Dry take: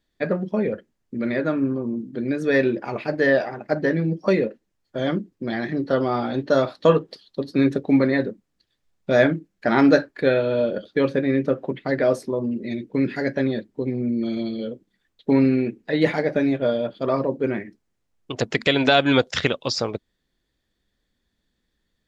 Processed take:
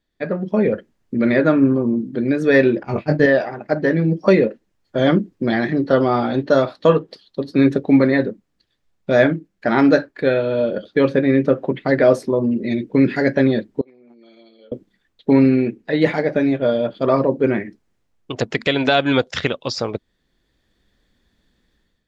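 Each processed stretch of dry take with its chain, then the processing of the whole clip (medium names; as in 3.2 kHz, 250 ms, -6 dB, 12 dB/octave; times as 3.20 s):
2.83–3.26 s: expander -25 dBFS + tone controls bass +12 dB, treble +3 dB + doubling 21 ms -5 dB
13.81–14.72 s: gate -20 dBFS, range -22 dB + high-pass 530 Hz
whole clip: level rider; treble shelf 5.6 kHz -6 dB; trim -1 dB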